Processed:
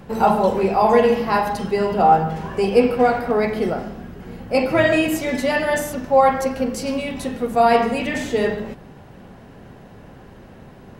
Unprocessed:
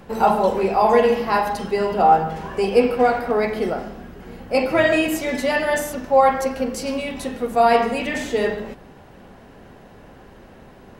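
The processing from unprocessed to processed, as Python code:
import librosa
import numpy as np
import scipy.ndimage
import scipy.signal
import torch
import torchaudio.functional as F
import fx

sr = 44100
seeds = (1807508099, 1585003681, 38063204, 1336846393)

y = fx.peak_eq(x, sr, hz=130.0, db=6.5, octaves=1.5)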